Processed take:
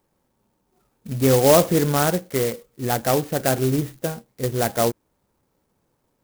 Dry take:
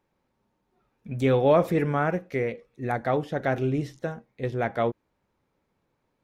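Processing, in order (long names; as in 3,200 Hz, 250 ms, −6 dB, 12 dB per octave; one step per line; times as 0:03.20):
converter with an unsteady clock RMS 0.095 ms
level +5 dB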